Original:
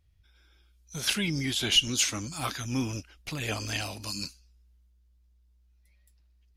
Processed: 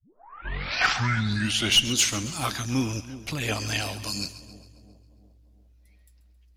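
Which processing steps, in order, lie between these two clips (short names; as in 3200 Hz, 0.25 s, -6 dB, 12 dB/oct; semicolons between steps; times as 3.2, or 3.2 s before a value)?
tape start at the beginning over 1.78 s; one-sided clip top -18.5 dBFS; split-band echo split 650 Hz, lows 0.349 s, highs 0.135 s, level -14.5 dB; gain +4 dB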